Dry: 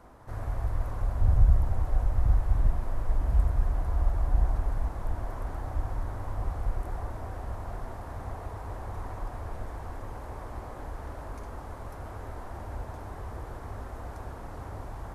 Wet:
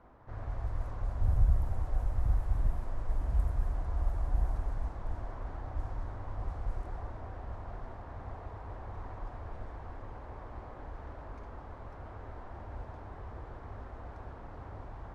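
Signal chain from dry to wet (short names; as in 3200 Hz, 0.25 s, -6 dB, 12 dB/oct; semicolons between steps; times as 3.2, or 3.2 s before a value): low-pass opened by the level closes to 2800 Hz, open at -18 dBFS; gain -5.5 dB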